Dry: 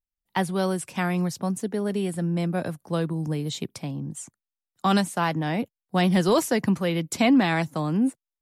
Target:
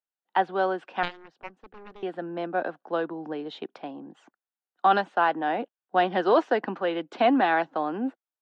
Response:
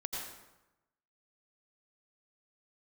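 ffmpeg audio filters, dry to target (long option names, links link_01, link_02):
-filter_complex "[0:a]highpass=frequency=300:width=0.5412,highpass=frequency=300:width=1.3066,equalizer=frequency=760:width_type=q:width=4:gain=7,equalizer=frequency=1500:width_type=q:width=4:gain=6,equalizer=frequency=2200:width_type=q:width=4:gain=-8,lowpass=frequency=3100:width=0.5412,lowpass=frequency=3100:width=1.3066,asettb=1/sr,asplit=3[link_01][link_02][link_03];[link_01]atrim=end=1.034[link_04];[link_02]atrim=start=1.03:end=2.03,asetpts=PTS-STARTPTS,afade=type=in:duration=0.004:curve=qsin,afade=type=out:start_time=0.996:duration=0.004:curve=qsin,aeval=exprs='0.211*(cos(1*acos(clip(val(0)/0.211,-1,1)))-cos(1*PI/2))+0.0188*(cos(2*acos(clip(val(0)/0.211,-1,1)))-cos(2*PI/2))+0.0841*(cos(3*acos(clip(val(0)/0.211,-1,1)))-cos(3*PI/2))+0.00266*(cos(6*acos(clip(val(0)/0.211,-1,1)))-cos(6*PI/2))':channel_layout=same[link_05];[link_03]atrim=start=2.026[link_06];[link_04][link_05]acrossfade=duration=0.004:curve1=hsin:curve2=qsin[link_07];[link_07][link_06]acrossfade=duration=0.004:curve1=qsin:curve2=hsin"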